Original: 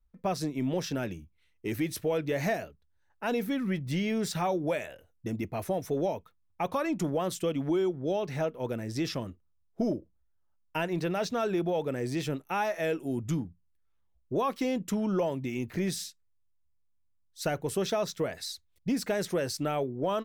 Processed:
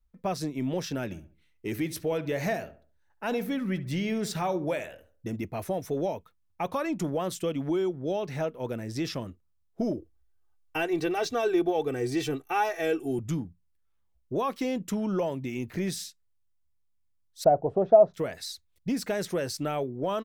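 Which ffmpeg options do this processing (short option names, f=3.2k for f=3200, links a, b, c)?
-filter_complex "[0:a]asplit=3[a][b][c];[a]afade=t=out:st=1.1:d=0.02[d];[b]asplit=2[e][f];[f]adelay=69,lowpass=f=1.9k:p=1,volume=-13.5dB,asplit=2[g][h];[h]adelay=69,lowpass=f=1.9k:p=1,volume=0.37,asplit=2[i][j];[j]adelay=69,lowpass=f=1.9k:p=1,volume=0.37,asplit=2[k][l];[l]adelay=69,lowpass=f=1.9k:p=1,volume=0.37[m];[e][g][i][k][m]amix=inputs=5:normalize=0,afade=t=in:st=1.1:d=0.02,afade=t=out:st=5.35:d=0.02[n];[c]afade=t=in:st=5.35:d=0.02[o];[d][n][o]amix=inputs=3:normalize=0,asettb=1/sr,asplit=3[p][q][r];[p]atrim=end=9.974[s];[q]atrim=start=9.97:end=13.19,asetpts=PTS-STARTPTS,afade=t=in:d=0.004:c=qsin,afade=t=out:st=3.216:d=0.004:c=qsin,aecho=1:1:2.6:0.95,atrim=end_sample=142002[t];[r]atrim=start=13.186[u];[s][t]acrossfade=d=0.004:c1=hsin:c2=qsin[v];[v][u]acrossfade=d=0.004:c1=qsin:c2=hsin,asettb=1/sr,asplit=3[w][x][y];[w]atrim=end=17.444[z];[x]atrim=start=17.44:end=18.14,asetpts=PTS-STARTPTS,afade=t=in:d=0.004:c=qsin,afade=t=out:st=0.696:d=0.004:c=qsin,lowpass=f=690:t=q:w=6.2[aa];[y]atrim=start=18.136[ab];[z][aa]acrossfade=d=0.004:c1=hsin:c2=qsin[ac];[ac][ab]acrossfade=d=0.004:c1=qsin:c2=hsin"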